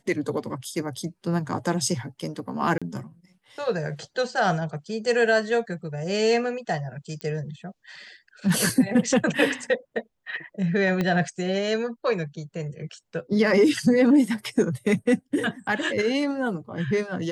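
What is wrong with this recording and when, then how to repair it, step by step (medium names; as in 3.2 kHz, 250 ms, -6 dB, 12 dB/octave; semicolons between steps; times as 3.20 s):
2.78–2.82 s: dropout 36 ms
7.21 s: pop -20 dBFS
11.01 s: pop -13 dBFS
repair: de-click; interpolate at 2.78 s, 36 ms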